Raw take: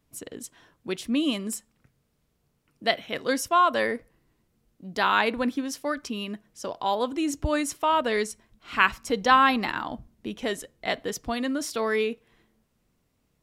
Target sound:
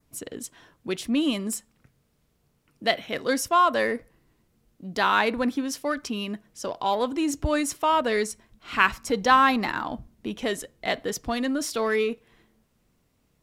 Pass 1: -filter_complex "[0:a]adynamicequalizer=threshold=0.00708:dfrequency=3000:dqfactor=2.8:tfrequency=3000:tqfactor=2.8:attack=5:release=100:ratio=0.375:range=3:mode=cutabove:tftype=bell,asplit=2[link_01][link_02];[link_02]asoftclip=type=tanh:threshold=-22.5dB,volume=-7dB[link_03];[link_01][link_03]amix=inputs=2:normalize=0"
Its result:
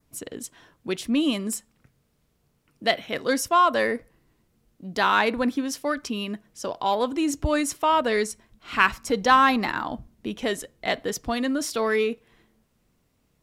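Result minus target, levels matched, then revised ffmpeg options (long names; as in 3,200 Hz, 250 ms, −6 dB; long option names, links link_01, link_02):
soft clipping: distortion −5 dB
-filter_complex "[0:a]adynamicequalizer=threshold=0.00708:dfrequency=3000:dqfactor=2.8:tfrequency=3000:tqfactor=2.8:attack=5:release=100:ratio=0.375:range=3:mode=cutabove:tftype=bell,asplit=2[link_01][link_02];[link_02]asoftclip=type=tanh:threshold=-31.5dB,volume=-7dB[link_03];[link_01][link_03]amix=inputs=2:normalize=0"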